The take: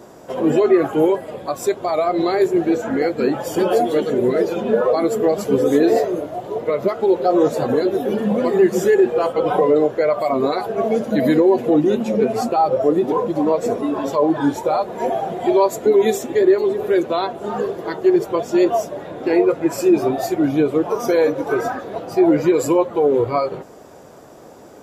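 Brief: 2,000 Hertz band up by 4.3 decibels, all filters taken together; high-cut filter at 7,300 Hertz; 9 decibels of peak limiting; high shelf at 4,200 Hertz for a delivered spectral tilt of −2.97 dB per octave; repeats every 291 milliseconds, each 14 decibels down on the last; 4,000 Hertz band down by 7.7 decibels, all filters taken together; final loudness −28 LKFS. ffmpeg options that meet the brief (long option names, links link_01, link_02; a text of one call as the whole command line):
ffmpeg -i in.wav -af "lowpass=7300,equalizer=frequency=2000:width_type=o:gain=8.5,equalizer=frequency=4000:width_type=o:gain=-8.5,highshelf=frequency=4200:gain=-6.5,alimiter=limit=-12.5dB:level=0:latency=1,aecho=1:1:291|582:0.2|0.0399,volume=-6.5dB" out.wav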